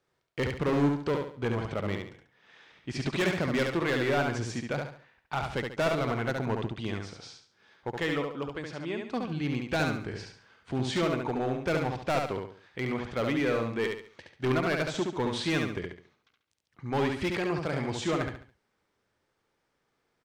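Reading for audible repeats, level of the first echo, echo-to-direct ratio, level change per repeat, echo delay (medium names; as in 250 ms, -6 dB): 4, -4.0 dB, -3.5 dB, -9.0 dB, 70 ms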